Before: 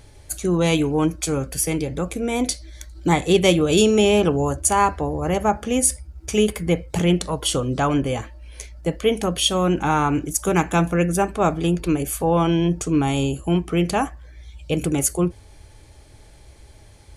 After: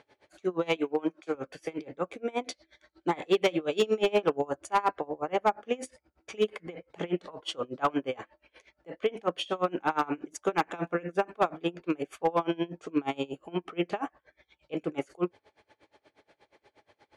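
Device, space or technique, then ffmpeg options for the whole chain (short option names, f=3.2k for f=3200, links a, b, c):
helicopter radio: -filter_complex "[0:a]highpass=370,lowpass=2.7k,aeval=exprs='val(0)*pow(10,-27*(0.5-0.5*cos(2*PI*8.4*n/s))/20)':c=same,asoftclip=type=hard:threshold=-17dB,asettb=1/sr,asplit=3[a][b][c];[a]atrim=end=0.764[d];[b]atrim=start=0.76:end=1.35,asetpts=PTS-STARTPTS,afade=t=in:d=0.004:c=qsin,afade=t=out:st=0.586:d=0.004:c=qsin,highpass=200[e];[c]atrim=start=1.346[f];[d][e]acrossfade=d=0.004:c1=hsin:c2=qsin[g];[g][f]acrossfade=d=0.004:c1=qsin:c2=hsin"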